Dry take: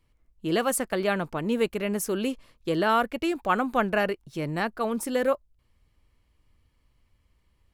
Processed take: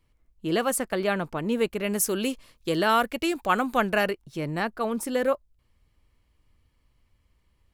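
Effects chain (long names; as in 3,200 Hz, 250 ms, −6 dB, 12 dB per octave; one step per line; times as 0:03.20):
0:01.84–0:04.11: high-shelf EQ 3,000 Hz +8 dB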